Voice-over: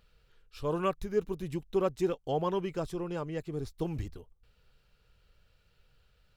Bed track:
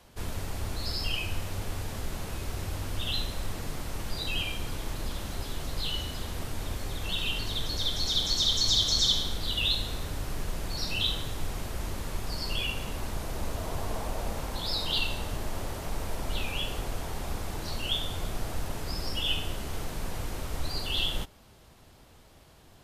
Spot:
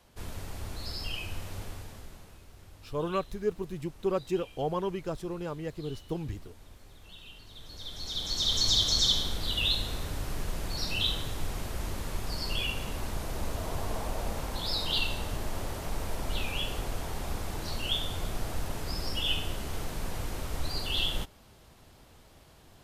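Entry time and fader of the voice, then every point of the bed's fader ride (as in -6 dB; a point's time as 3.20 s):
2.30 s, -0.5 dB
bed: 1.61 s -5 dB
2.46 s -18.5 dB
7.46 s -18.5 dB
8.58 s -0.5 dB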